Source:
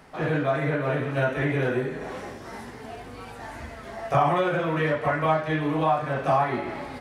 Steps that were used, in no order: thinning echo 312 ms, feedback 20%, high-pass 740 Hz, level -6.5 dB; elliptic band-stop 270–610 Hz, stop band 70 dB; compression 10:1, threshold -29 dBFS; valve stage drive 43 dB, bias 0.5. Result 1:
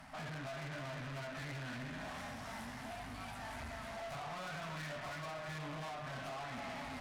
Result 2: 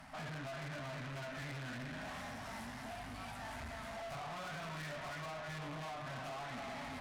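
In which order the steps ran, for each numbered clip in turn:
elliptic band-stop > compression > valve stage > thinning echo; elliptic band-stop > compression > thinning echo > valve stage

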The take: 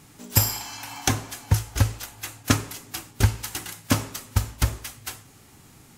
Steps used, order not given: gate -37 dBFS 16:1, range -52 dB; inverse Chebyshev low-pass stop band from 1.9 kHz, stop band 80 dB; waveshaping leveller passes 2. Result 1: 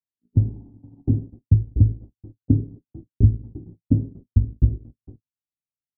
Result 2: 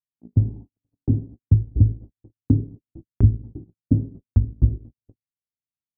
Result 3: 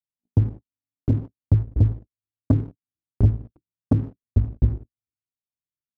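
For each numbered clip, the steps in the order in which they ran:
gate > waveshaping leveller > inverse Chebyshev low-pass; waveshaping leveller > inverse Chebyshev low-pass > gate; inverse Chebyshev low-pass > gate > waveshaping leveller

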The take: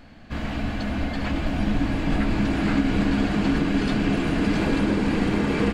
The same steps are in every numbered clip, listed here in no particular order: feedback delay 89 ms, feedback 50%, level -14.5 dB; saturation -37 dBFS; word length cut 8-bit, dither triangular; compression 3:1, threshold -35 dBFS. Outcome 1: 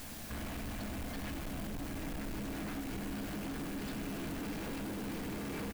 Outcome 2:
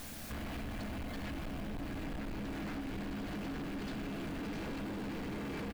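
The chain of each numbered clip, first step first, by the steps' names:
compression > word length cut > saturation > feedback delay; feedback delay > word length cut > compression > saturation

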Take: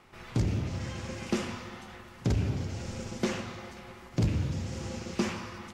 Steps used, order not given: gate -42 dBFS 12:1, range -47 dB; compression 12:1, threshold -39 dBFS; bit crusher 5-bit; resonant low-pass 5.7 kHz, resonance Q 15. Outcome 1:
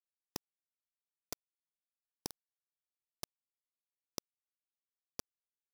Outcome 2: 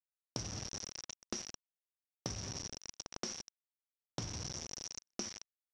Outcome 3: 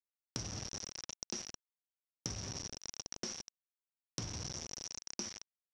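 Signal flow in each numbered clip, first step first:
gate > resonant low-pass > compression > bit crusher; bit crusher > gate > resonant low-pass > compression; bit crusher > resonant low-pass > gate > compression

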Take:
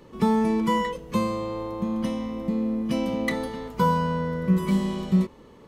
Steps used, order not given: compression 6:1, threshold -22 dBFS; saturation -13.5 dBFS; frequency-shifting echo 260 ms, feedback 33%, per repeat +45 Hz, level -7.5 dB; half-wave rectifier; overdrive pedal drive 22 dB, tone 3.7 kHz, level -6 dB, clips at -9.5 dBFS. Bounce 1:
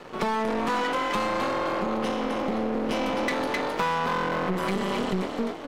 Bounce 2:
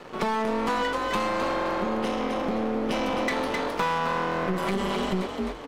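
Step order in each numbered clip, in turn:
frequency-shifting echo > half-wave rectifier > overdrive pedal > compression > saturation; half-wave rectifier > overdrive pedal > frequency-shifting echo > compression > saturation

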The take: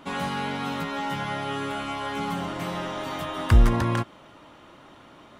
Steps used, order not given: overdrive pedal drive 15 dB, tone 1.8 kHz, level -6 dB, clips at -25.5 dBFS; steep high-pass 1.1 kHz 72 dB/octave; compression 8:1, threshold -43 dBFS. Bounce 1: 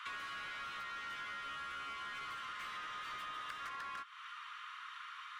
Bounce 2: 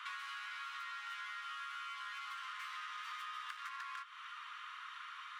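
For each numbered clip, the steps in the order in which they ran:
steep high-pass > overdrive pedal > compression; overdrive pedal > steep high-pass > compression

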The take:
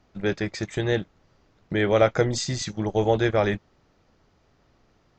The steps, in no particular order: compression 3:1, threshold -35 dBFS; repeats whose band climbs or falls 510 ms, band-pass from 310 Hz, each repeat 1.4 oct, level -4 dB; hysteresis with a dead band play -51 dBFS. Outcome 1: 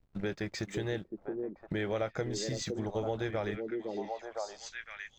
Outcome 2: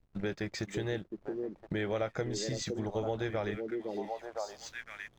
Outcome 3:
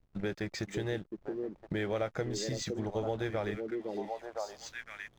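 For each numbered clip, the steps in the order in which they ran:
hysteresis with a dead band > repeats whose band climbs or falls > compression; repeats whose band climbs or falls > hysteresis with a dead band > compression; repeats whose band climbs or falls > compression > hysteresis with a dead band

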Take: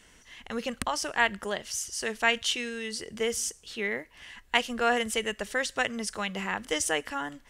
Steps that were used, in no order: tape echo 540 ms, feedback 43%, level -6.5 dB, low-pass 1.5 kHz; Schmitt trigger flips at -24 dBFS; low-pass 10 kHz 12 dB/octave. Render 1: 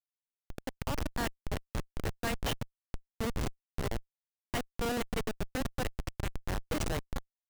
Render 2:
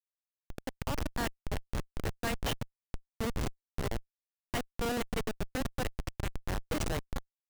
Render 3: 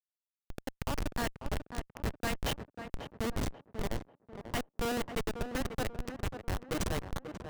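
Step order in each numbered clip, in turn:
tape echo > low-pass > Schmitt trigger; low-pass > tape echo > Schmitt trigger; low-pass > Schmitt trigger > tape echo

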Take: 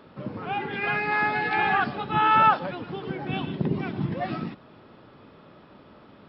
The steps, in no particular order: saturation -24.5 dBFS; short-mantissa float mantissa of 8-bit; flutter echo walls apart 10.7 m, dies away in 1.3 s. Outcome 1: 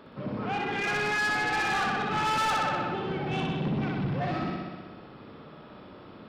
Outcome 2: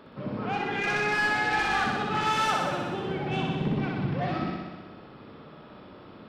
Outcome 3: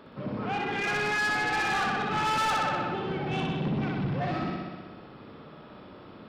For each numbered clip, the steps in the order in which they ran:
short-mantissa float > flutter echo > saturation; short-mantissa float > saturation > flutter echo; flutter echo > short-mantissa float > saturation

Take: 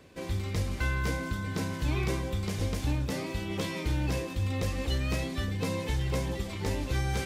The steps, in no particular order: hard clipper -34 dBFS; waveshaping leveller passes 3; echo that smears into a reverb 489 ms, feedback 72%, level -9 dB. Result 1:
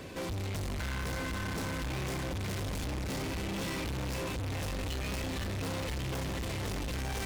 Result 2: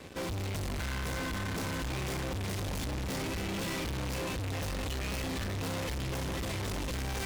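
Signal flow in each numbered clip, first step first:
echo that smears into a reverb > hard clipper > waveshaping leveller; waveshaping leveller > echo that smears into a reverb > hard clipper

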